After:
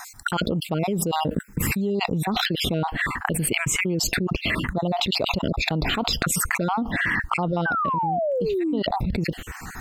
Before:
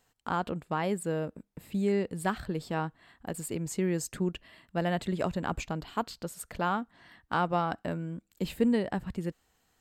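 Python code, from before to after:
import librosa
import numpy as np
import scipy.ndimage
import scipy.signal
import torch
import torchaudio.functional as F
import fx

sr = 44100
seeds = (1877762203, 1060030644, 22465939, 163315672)

y = fx.spec_dropout(x, sr, seeds[0], share_pct=40)
y = fx.high_shelf(y, sr, hz=8100.0, db=fx.steps((0.0, -3.5), (2.04, -11.0)))
y = fx.env_phaser(y, sr, low_hz=510.0, high_hz=1700.0, full_db=-31.0)
y = fx.spec_paint(y, sr, seeds[1], shape='fall', start_s=7.65, length_s=1.15, low_hz=260.0, high_hz=1600.0, level_db=-30.0)
y = fx.env_flatten(y, sr, amount_pct=100)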